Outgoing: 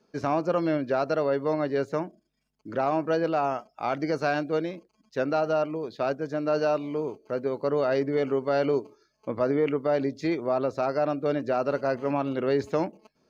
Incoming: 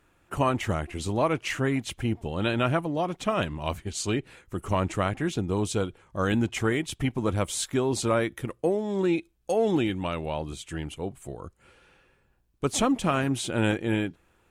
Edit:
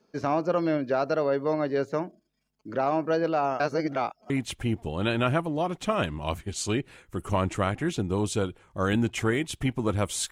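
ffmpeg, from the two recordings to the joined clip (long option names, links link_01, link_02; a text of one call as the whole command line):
ffmpeg -i cue0.wav -i cue1.wav -filter_complex "[0:a]apad=whole_dur=10.31,atrim=end=10.31,asplit=2[link_01][link_02];[link_01]atrim=end=3.602[link_03];[link_02]atrim=start=3.598:end=4.302,asetpts=PTS-STARTPTS,areverse[link_04];[1:a]atrim=start=1.688:end=7.7[link_05];[link_03][link_04]acrossfade=duration=0.004:curve1=hsin:curve2=hsin[link_06];[link_06][link_05]acrossfade=duration=0.004:curve1=hsin:curve2=hsin" out.wav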